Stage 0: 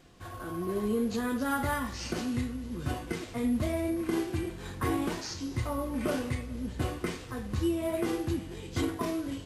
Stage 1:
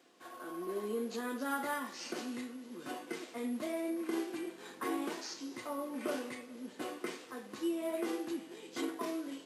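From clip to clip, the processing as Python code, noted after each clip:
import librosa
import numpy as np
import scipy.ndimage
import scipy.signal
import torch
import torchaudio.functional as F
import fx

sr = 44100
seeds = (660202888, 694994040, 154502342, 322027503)

y = scipy.signal.sosfilt(scipy.signal.butter(4, 260.0, 'highpass', fs=sr, output='sos'), x)
y = F.gain(torch.from_numpy(y), -5.0).numpy()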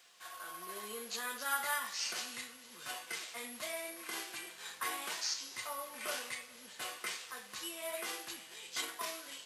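y = fx.tone_stack(x, sr, knobs='10-0-10')
y = F.gain(torch.from_numpy(y), 9.5).numpy()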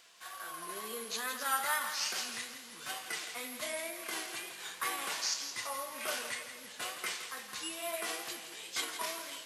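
y = fx.wow_flutter(x, sr, seeds[0], rate_hz=2.1, depth_cents=74.0)
y = fx.echo_feedback(y, sr, ms=166, feedback_pct=46, wet_db=-10)
y = F.gain(torch.from_numpy(y), 2.5).numpy()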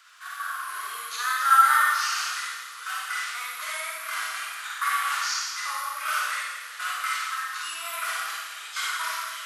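y = fx.highpass_res(x, sr, hz=1300.0, q=5.8)
y = fx.rev_schroeder(y, sr, rt60_s=0.93, comb_ms=38, drr_db=-3.0)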